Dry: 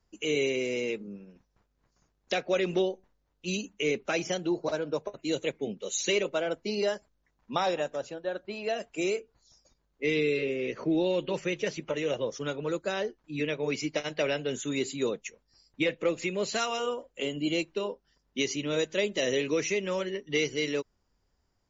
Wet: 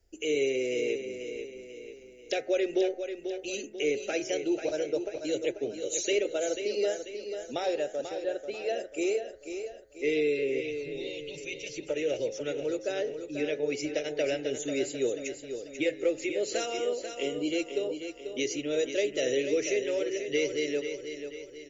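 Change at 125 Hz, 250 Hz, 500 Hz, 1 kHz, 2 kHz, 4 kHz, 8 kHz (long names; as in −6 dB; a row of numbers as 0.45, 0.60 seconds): −9.5 dB, −1.5 dB, +1.0 dB, −5.5 dB, −3.0 dB, −3.0 dB, can't be measured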